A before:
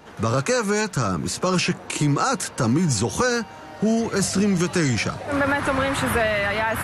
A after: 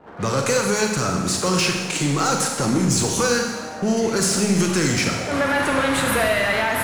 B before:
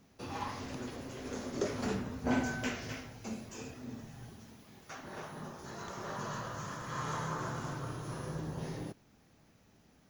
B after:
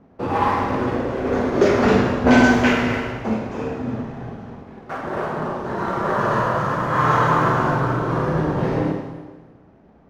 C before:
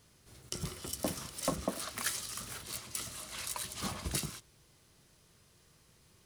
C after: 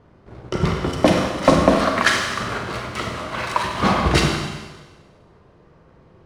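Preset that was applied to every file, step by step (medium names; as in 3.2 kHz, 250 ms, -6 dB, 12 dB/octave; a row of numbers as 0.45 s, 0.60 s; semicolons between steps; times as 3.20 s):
dynamic bell 1 kHz, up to -3 dB, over -35 dBFS, Q 0.71; level-controlled noise filter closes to 970 Hz, open at -22 dBFS; tone controls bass -5 dB, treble +2 dB; waveshaping leveller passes 1; in parallel at -9.5 dB: hard clipper -25.5 dBFS; on the sum: Schroeder reverb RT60 1.3 s, combs from 33 ms, DRR 2 dB; normalise loudness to -20 LUFS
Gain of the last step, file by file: -2.5 dB, +14.0 dB, +17.0 dB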